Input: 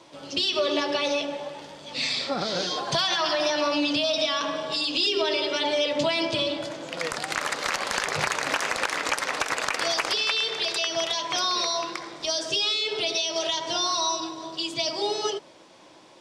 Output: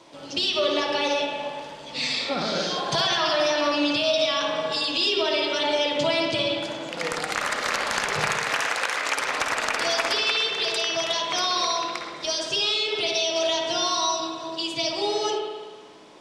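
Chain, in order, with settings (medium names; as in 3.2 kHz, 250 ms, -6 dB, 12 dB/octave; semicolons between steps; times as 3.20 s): 8.32–9.17 s: high-pass 600 Hz 6 dB/octave; flutter echo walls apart 9.2 m, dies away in 0.25 s; spring tank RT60 1.4 s, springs 58 ms, chirp 60 ms, DRR 2 dB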